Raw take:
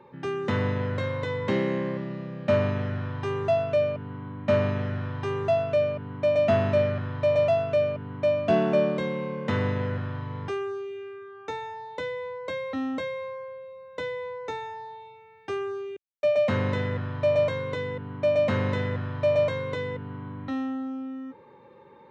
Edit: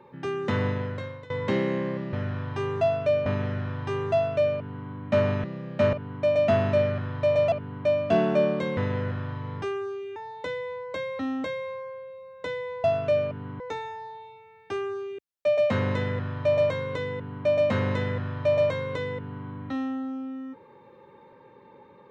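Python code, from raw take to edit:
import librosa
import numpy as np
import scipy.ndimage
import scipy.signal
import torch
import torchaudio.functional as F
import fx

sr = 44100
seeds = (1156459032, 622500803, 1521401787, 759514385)

y = fx.edit(x, sr, fx.fade_out_to(start_s=0.67, length_s=0.63, floor_db=-19.5),
    fx.swap(start_s=2.13, length_s=0.49, other_s=4.8, other_length_s=1.13),
    fx.duplicate(start_s=3.49, length_s=0.76, to_s=14.38),
    fx.cut(start_s=7.52, length_s=0.38),
    fx.cut(start_s=9.15, length_s=0.48),
    fx.cut(start_s=11.02, length_s=0.68), tone=tone)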